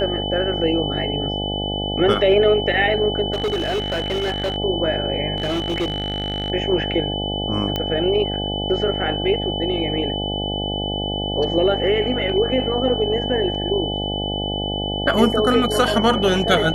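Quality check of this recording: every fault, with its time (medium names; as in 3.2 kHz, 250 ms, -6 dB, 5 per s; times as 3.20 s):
buzz 50 Hz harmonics 17 -26 dBFS
whine 3 kHz -26 dBFS
3.32–4.56 s: clipped -18 dBFS
5.36–6.50 s: clipped -18 dBFS
7.76 s: pop -9 dBFS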